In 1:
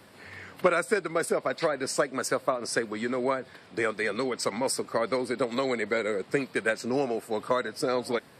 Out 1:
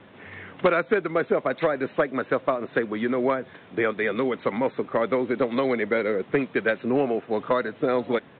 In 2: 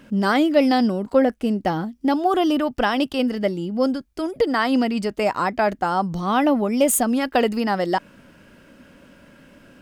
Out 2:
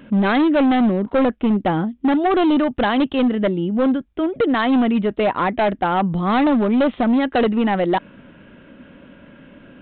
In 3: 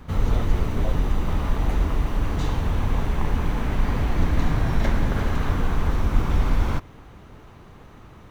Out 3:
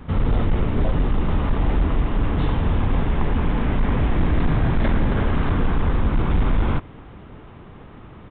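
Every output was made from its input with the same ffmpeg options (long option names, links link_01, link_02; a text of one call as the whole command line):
ffmpeg -i in.wav -af "equalizer=frequency=240:width=0.6:gain=3.5,aresample=8000,asoftclip=type=hard:threshold=-15.5dB,aresample=44100,volume=2.5dB" out.wav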